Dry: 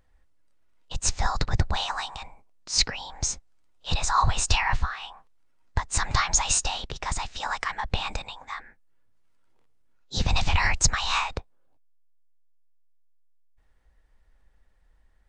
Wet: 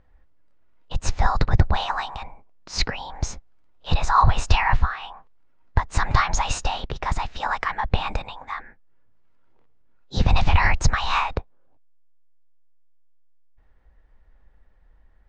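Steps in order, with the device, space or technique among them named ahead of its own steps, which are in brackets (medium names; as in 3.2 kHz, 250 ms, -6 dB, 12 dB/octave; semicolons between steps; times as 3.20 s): through cloth (low-pass 6.9 kHz 12 dB/octave; treble shelf 3.6 kHz -16 dB); trim +6.5 dB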